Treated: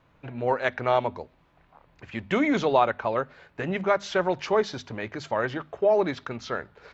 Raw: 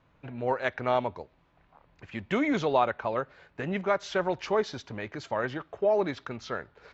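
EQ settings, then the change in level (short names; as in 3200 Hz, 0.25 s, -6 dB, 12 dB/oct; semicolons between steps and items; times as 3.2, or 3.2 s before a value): notches 50/100/150/200/250 Hz; +3.5 dB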